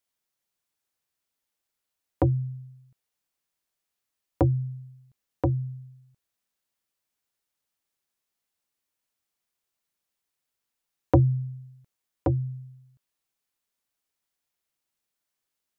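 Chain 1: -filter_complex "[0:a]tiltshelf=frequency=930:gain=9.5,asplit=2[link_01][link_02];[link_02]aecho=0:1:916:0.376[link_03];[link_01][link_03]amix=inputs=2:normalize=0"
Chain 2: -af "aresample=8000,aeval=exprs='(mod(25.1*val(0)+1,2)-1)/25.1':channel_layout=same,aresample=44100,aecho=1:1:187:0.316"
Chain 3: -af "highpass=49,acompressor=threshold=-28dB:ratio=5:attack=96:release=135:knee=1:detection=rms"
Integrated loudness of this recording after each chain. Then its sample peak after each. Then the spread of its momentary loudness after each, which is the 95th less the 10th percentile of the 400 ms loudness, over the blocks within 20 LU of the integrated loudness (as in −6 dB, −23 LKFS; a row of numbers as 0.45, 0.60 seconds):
−20.5, −36.0, −33.0 LKFS; −2.5, −23.5, −11.0 dBFS; 19, 16, 19 LU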